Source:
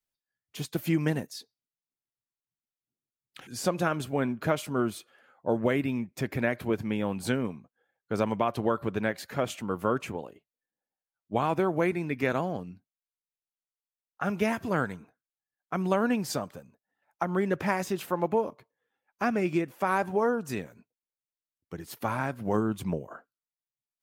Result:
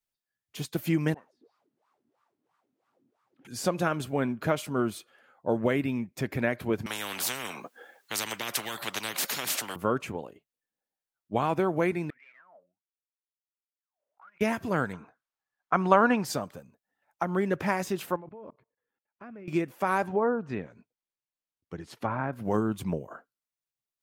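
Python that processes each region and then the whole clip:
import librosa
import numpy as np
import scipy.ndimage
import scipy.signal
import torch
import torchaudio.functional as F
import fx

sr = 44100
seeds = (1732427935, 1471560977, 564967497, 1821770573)

y = fx.chain(x, sr, fx.zero_step(step_db=-45.0),
    fx.wah_lfo(hz=3.0, low_hz=240.0, high_hz=1200.0, q=6.2), at=(1.14, 3.45))
y = fx.chain(y, sr, fx.highpass(hz=240.0, slope=24),
    fx.spectral_comp(ratio=10.0), at=(6.86, 9.76))
y = fx.chain(y, sr, fx.tube_stage(drive_db=33.0, bias=0.65),
    fx.wah_lfo(hz=1.4, low_hz=550.0, high_hz=2400.0, q=20.0),
    fx.pre_swell(db_per_s=130.0), at=(12.1, 14.41))
y = fx.chain(y, sr, fx.lowpass(hz=7000.0, slope=12),
    fx.peak_eq(hz=1100.0, db=10.5, octaves=1.7), at=(14.93, 16.25))
y = fx.chain(y, sr, fx.air_absorb(metres=370.0),
    fx.notch(hz=770.0, q=8.7),
    fx.level_steps(step_db=22), at=(18.16, 19.48))
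y = fx.chain(y, sr, fx.env_lowpass_down(base_hz=1800.0, full_db=-26.5),
    fx.high_shelf(hz=7800.0, db=-11.0), at=(20.07, 22.33))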